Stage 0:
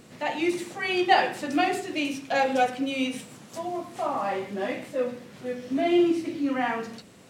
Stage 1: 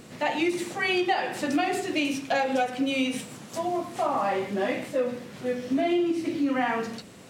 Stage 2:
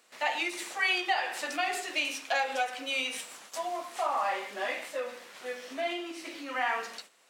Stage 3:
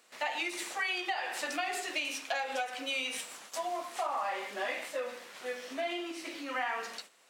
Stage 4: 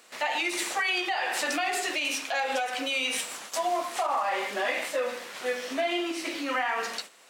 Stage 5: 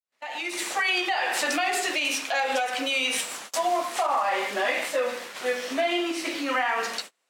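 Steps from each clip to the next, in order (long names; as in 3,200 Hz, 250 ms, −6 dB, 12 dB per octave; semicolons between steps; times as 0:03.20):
downward compressor 12 to 1, threshold −25 dBFS, peak gain reduction 12.5 dB; level +4 dB
noise gate −43 dBFS, range −11 dB; high-pass filter 830 Hz 12 dB per octave
downward compressor, threshold −30 dBFS, peak gain reduction 7.5 dB
brickwall limiter −27.5 dBFS, peak gain reduction 8.5 dB; level +8.5 dB
fade in at the beginning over 0.87 s; noise gate −41 dBFS, range −23 dB; level +3 dB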